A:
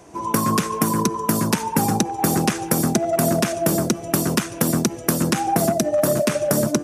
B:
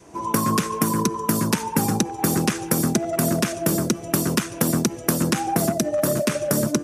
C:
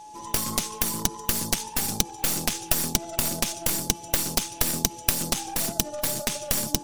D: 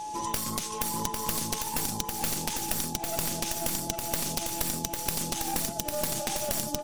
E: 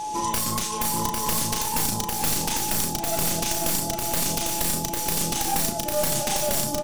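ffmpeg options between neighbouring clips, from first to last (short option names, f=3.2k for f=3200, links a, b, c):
-af "adynamicequalizer=threshold=0.0158:dfrequency=730:dqfactor=2.6:tfrequency=730:tqfactor=2.6:attack=5:release=100:ratio=0.375:range=3:mode=cutabove:tftype=bell,volume=-1dB"
-af "aeval=exprs='val(0)+0.0355*sin(2*PI*850*n/s)':c=same,highshelf=f=2.4k:t=q:w=1.5:g=12.5,aeval=exprs='2.66*(cos(1*acos(clip(val(0)/2.66,-1,1)))-cos(1*PI/2))+0.841*(cos(6*acos(clip(val(0)/2.66,-1,1)))-cos(6*PI/2))+0.841*(cos(7*acos(clip(val(0)/2.66,-1,1)))-cos(7*PI/2))':c=same,volume=-13dB"
-filter_complex "[0:a]asplit=2[a][b];[b]alimiter=limit=-12dB:level=0:latency=1:release=37,volume=2.5dB[c];[a][c]amix=inputs=2:normalize=0,acompressor=threshold=-28dB:ratio=6,aecho=1:1:800:0.596"
-filter_complex "[0:a]asoftclip=type=hard:threshold=-20dB,asplit=2[a][b];[b]adelay=35,volume=-5dB[c];[a][c]amix=inputs=2:normalize=0,volume=5.5dB"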